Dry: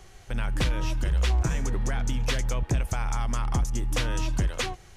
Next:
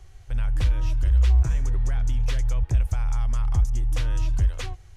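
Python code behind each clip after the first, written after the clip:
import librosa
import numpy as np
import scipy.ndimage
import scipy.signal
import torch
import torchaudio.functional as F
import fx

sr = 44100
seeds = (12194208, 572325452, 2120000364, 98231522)

y = fx.low_shelf_res(x, sr, hz=130.0, db=11.0, q=1.5)
y = y * 10.0 ** (-7.0 / 20.0)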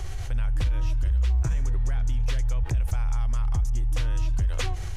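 y = fx.env_flatten(x, sr, amount_pct=70)
y = y * 10.0 ** (-6.0 / 20.0)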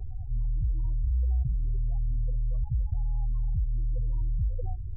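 y = scipy.signal.sosfilt(scipy.signal.butter(4, 1200.0, 'lowpass', fs=sr, output='sos'), x)
y = fx.spec_topn(y, sr, count=8)
y = y * 10.0 ** (-3.5 / 20.0)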